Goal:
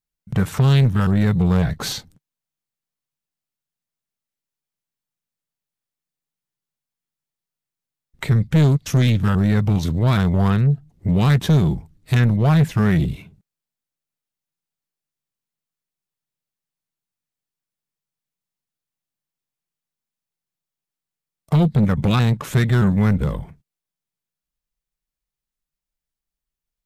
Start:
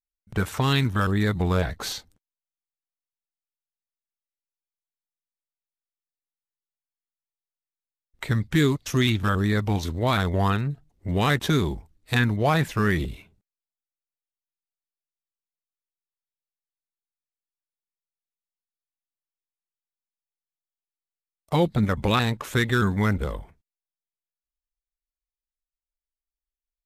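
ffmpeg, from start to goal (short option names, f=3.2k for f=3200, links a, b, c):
-filter_complex "[0:a]equalizer=f=150:w=1.2:g=13.5,asplit=2[a][b];[b]acompressor=threshold=-26dB:ratio=6,volume=-1dB[c];[a][c]amix=inputs=2:normalize=0,asoftclip=type=tanh:threshold=-10.5dB"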